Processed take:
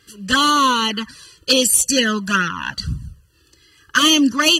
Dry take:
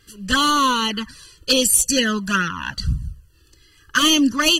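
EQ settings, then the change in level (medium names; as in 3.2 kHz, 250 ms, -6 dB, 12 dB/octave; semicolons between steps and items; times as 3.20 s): high-pass 41 Hz; bass shelf 86 Hz -10 dB; treble shelf 11 kHz -4.5 dB; +2.5 dB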